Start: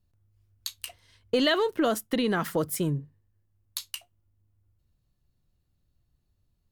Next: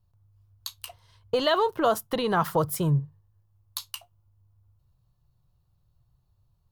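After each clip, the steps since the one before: ten-band graphic EQ 125 Hz +9 dB, 250 Hz -11 dB, 1 kHz +9 dB, 2 kHz -8 dB, 8 kHz -5 dB; in parallel at 0 dB: gain riding; on the sum: trim -3 dB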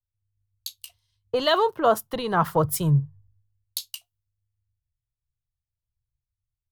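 three bands expanded up and down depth 100%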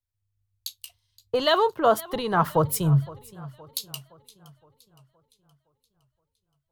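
modulated delay 517 ms, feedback 49%, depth 138 cents, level -20.5 dB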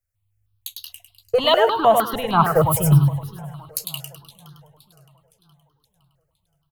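on a send: feedback delay 102 ms, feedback 34%, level -4.5 dB; on the sum: stepped phaser 6.5 Hz 960–2300 Hz; trim +7 dB

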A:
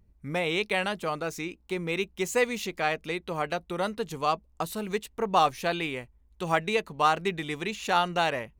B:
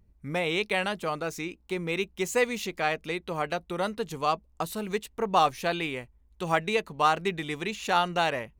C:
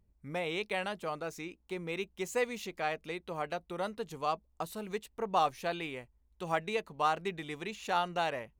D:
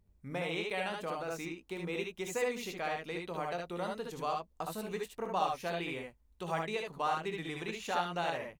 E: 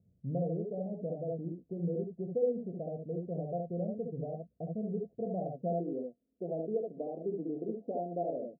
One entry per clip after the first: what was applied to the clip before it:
no audible change
peaking EQ 680 Hz +3 dB 1.5 oct; trim -8.5 dB
compression 1.5:1, threshold -39 dBFS, peak gain reduction 6 dB; on a send: early reflections 23 ms -11.5 dB, 63 ms -6.5 dB, 75 ms -3.5 dB
bit-reversed sample order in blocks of 16 samples; rippled Chebyshev low-pass 710 Hz, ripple 6 dB; high-pass sweep 120 Hz -> 280 Hz, 5.33–5.97 s; trim +4.5 dB

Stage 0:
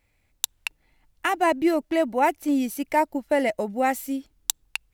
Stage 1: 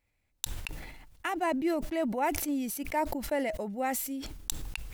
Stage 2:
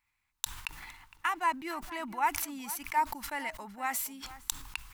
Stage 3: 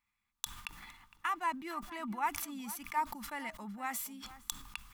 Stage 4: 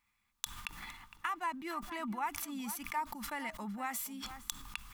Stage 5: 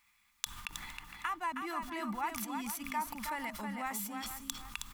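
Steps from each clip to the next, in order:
decay stretcher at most 41 dB/s; trim -9 dB
resonant low shelf 760 Hz -10 dB, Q 3; echo from a far wall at 79 m, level -16 dB
small resonant body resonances 210/1200/3400 Hz, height 12 dB, ringing for 65 ms; trim -5.5 dB
compression 2:1, threshold -45 dBFS, peak gain reduction 9.5 dB; trim +5.5 dB
delay 317 ms -5.5 dB; tape noise reduction on one side only encoder only

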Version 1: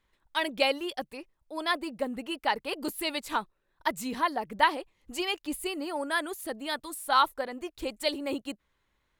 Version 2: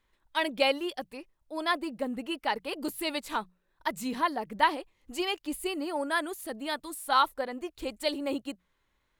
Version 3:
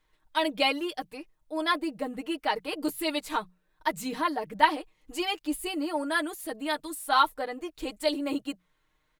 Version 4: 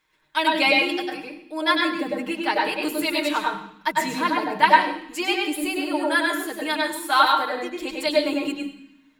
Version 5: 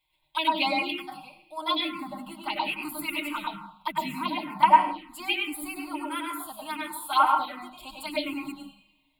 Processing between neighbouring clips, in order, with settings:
hum notches 60/120/180 Hz; harmonic-percussive split harmonic +4 dB; trim -2.5 dB
comb 6.5 ms, depth 72%
reverberation RT60 0.65 s, pre-delay 97 ms, DRR -0.5 dB; trim +4 dB
static phaser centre 1.7 kHz, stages 6; touch-sensitive phaser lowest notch 220 Hz, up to 3.9 kHz, full sweep at -16 dBFS

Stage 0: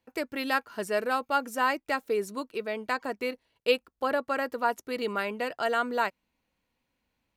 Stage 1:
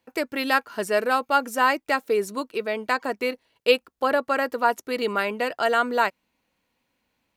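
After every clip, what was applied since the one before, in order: bass shelf 100 Hz -10 dB; trim +6 dB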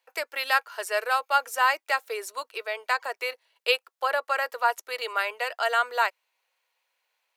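Bessel high-pass 800 Hz, order 8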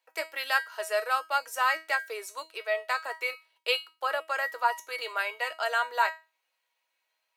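feedback comb 320 Hz, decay 0.27 s, harmonics all, mix 80%; trim +7.5 dB

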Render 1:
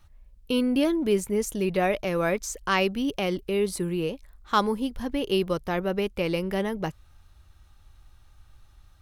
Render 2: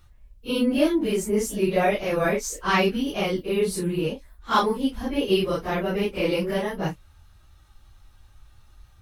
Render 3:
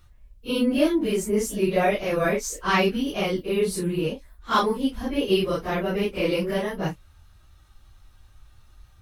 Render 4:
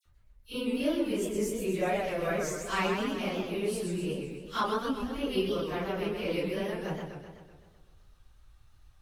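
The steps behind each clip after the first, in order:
phase randomisation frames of 100 ms; trim +2.5 dB
band-stop 840 Hz, Q 22
phase dispersion lows, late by 57 ms, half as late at 2.4 kHz; modulated delay 127 ms, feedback 60%, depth 193 cents, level -5 dB; trim -9 dB

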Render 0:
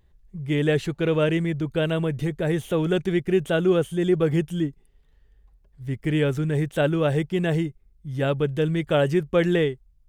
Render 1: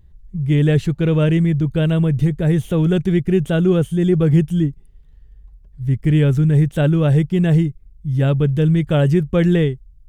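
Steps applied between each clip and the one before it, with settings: tone controls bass +13 dB, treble +2 dB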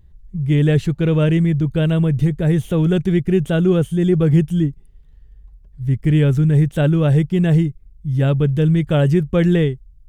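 no audible change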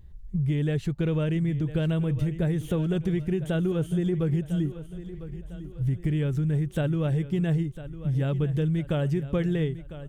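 compression 10:1, threshold -23 dBFS, peak gain reduction 14 dB; feedback delay 1002 ms, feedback 44%, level -14 dB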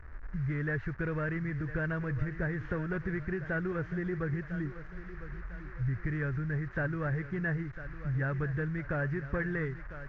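one-bit delta coder 32 kbps, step -43.5 dBFS; FFT filter 100 Hz 0 dB, 160 Hz -10 dB, 820 Hz -5 dB, 1.7 kHz +11 dB, 3.2 kHz -20 dB

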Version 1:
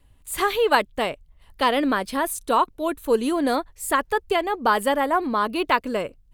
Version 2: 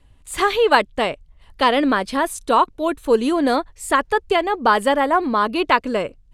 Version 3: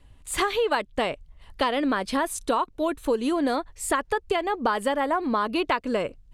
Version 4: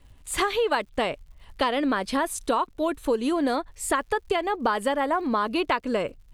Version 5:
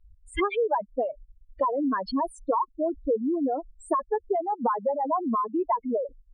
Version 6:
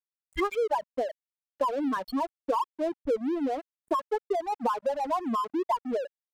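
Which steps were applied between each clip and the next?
low-pass 8.2 kHz 12 dB/octave; trim +4 dB
compression, threshold -21 dBFS, peak gain reduction 11.5 dB
crackle 130 per s -50 dBFS
spectral contrast enhancement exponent 4; resonant high shelf 5.4 kHz -12.5 dB, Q 1.5; reverb removal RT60 1.7 s
crossover distortion -39.5 dBFS; trim -1 dB

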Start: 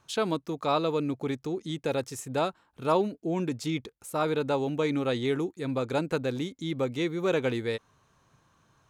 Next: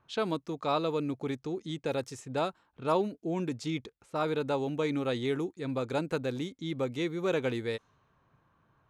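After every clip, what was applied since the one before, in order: level-controlled noise filter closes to 2.1 kHz, open at -26.5 dBFS; trim -3 dB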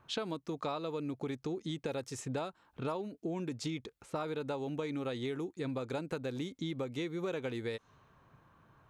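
compression 10:1, threshold -39 dBFS, peak gain reduction 17 dB; trim +5 dB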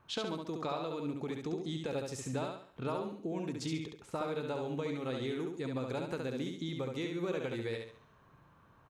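feedback delay 69 ms, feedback 38%, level -4 dB; trim -1 dB

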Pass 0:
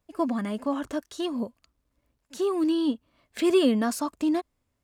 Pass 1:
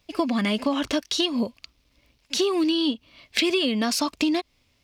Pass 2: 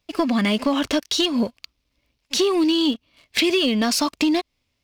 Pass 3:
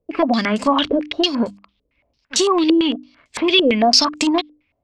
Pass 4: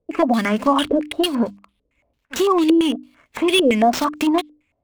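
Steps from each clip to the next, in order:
high-order bell 3.5 kHz +12 dB; compression 12:1, threshold -28 dBFS, peak gain reduction 14 dB; trim +8.5 dB
waveshaping leveller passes 2; trim -3.5 dB
hum notches 50/100/150/200/250/300 Hz; step-sequenced low-pass 8.9 Hz 470–7700 Hz; trim +1.5 dB
median filter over 9 samples

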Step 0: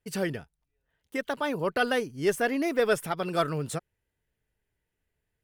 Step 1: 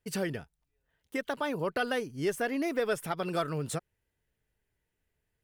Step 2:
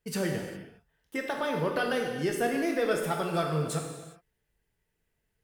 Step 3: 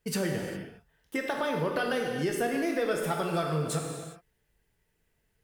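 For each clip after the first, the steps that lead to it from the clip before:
compression 2:1, threshold -30 dBFS, peak gain reduction 6.5 dB
gated-style reverb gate 430 ms falling, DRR 1 dB
compression 2:1, threshold -34 dBFS, peak gain reduction 7 dB; trim +4.5 dB

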